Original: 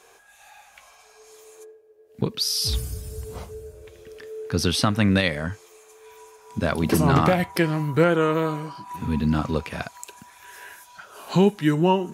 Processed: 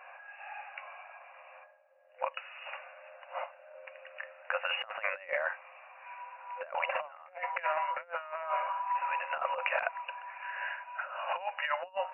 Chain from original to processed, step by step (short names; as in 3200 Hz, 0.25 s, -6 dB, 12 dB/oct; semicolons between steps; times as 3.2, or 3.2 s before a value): FFT band-pass 510–2900 Hz; negative-ratio compressor -34 dBFS, ratio -0.5